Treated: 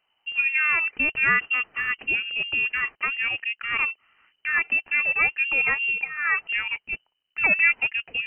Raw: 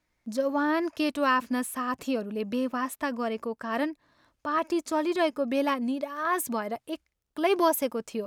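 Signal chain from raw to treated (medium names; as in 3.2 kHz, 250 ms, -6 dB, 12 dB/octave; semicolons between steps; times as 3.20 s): frequency inversion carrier 3 kHz; trim +3.5 dB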